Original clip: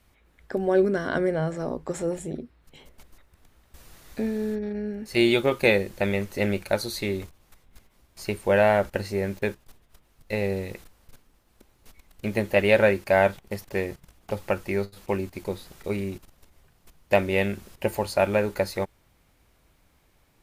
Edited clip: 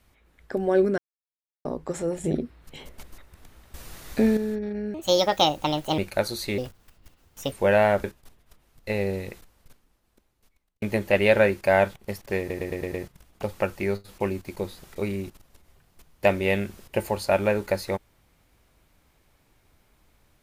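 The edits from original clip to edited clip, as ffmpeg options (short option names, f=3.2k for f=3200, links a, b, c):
-filter_complex "[0:a]asplit=16[a][b][c][d][e][f][g][h][i][j][k][l][m][n][o][p];[a]atrim=end=0.98,asetpts=PTS-STARTPTS,afade=t=out:st=0.976:d=0.004:c=hsin[q];[b]atrim=start=0.98:end=1.65,asetpts=PTS-STARTPTS,volume=0[r];[c]atrim=start=1.65:end=2.242,asetpts=PTS-STARTPTS,afade=t=in:d=0.004:c=hsin[s];[d]atrim=start=2.238:end=4.372,asetpts=PTS-STARTPTS,volume=7.5dB[t];[e]atrim=start=4.368:end=4.944[u];[f]atrim=start=4.94:end=6.52,asetpts=PTS-STARTPTS,asetrate=67032,aresample=44100[v];[g]atrim=start=6.516:end=7.124[w];[h]atrim=start=7.12:end=8.37,asetpts=PTS-STARTPTS,asetrate=58653,aresample=44100,atrim=end_sample=41447,asetpts=PTS-STARTPTS[x];[i]atrim=start=8.366:end=8.892[y];[j]atrim=start=9.468:end=12.25,asetpts=PTS-STARTPTS,afade=t=out:st=1.212:d=1.57[z];[k]atrim=start=12.25:end=13.932,asetpts=PTS-STARTPTS,afade=t=in:d=0.004:c=hsin[aa];[l]atrim=start=13.818:end=13.932[ab];[m]atrim=start=13.818:end=13.932[ac];[n]atrim=start=13.818:end=13.932[ad];[o]atrim=start=13.818:end=13.932[ae];[p]atrim=start=13.818[af];[q][r][s]concat=n=3:v=0:a=1[ag];[ag][t]acrossfade=d=0.004:c1=hsin:c2=hsin[ah];[ah][u]acrossfade=d=0.004:c1=hsin:c2=hsin[ai];[ai][v]acrossfade=d=0.004:c1=hsin:c2=hsin[aj];[aj][w]acrossfade=d=0.004:c1=hsin:c2=hsin[ak];[ak][x]acrossfade=d=0.004:c1=hsin:c2=hsin[al];[al][y]acrossfade=d=0.004:c1=hsin:c2=hsin[am];[z][aa]concat=n=2:v=0:a=1[an];[am][an]acrossfade=d=0.004:c1=hsin:c2=hsin[ao];[ao][ab]acrossfade=d=0.004:c1=hsin:c2=hsin[ap];[ap][ac]acrossfade=d=0.004:c1=hsin:c2=hsin[aq];[aq][ad]acrossfade=d=0.004:c1=hsin:c2=hsin[ar];[ar][ae]acrossfade=d=0.004:c1=hsin:c2=hsin[as];[as][af]acrossfade=d=0.004:c1=hsin:c2=hsin"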